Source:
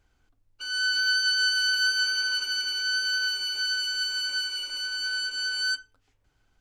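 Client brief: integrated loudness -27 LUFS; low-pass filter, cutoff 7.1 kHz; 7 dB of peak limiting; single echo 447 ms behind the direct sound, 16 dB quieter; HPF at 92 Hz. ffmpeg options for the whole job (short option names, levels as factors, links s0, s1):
-af "highpass=92,lowpass=7100,alimiter=limit=0.0708:level=0:latency=1,aecho=1:1:447:0.158,volume=1.06"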